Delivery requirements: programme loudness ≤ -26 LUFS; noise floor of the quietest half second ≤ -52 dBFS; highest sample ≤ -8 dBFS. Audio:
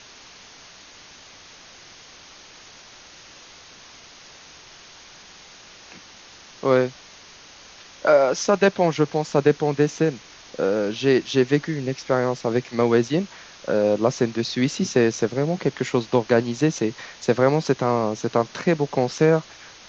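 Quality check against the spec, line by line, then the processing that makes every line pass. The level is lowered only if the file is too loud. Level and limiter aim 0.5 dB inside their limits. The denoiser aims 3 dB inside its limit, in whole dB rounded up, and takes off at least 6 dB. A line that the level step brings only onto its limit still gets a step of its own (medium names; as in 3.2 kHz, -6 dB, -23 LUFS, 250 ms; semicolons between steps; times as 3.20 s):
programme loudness -21.5 LUFS: fail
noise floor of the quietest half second -46 dBFS: fail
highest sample -5.0 dBFS: fail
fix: noise reduction 6 dB, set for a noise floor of -46 dBFS; trim -5 dB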